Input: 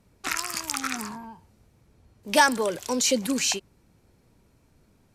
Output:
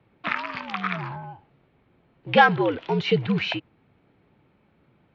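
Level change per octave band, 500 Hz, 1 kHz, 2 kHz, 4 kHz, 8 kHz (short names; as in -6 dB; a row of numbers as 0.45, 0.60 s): +3.0 dB, +3.5 dB, +3.5 dB, -2.5 dB, under -30 dB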